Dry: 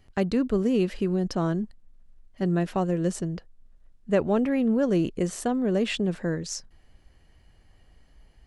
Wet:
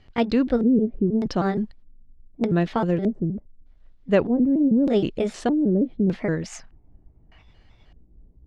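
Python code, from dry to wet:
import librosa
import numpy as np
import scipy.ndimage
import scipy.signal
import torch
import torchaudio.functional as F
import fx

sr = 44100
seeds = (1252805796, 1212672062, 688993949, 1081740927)

y = fx.pitch_trill(x, sr, semitones=3.0, every_ms=157)
y = fx.filter_lfo_lowpass(y, sr, shape='square', hz=0.82, low_hz=310.0, high_hz=4000.0, q=1.2)
y = fx.spec_box(y, sr, start_s=6.43, length_s=0.99, low_hz=610.0, high_hz=3000.0, gain_db=8)
y = y * 10.0 ** (4.0 / 20.0)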